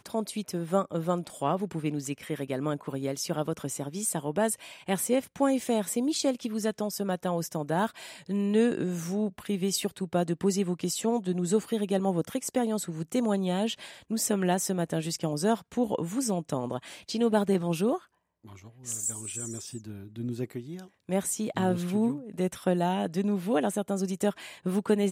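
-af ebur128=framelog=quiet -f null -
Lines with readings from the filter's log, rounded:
Integrated loudness:
  I:         -29.6 LUFS
  Threshold: -39.8 LUFS
Loudness range:
  LRA:         3.1 LU
  Threshold: -49.8 LUFS
  LRA low:   -31.9 LUFS
  LRA high:  -28.8 LUFS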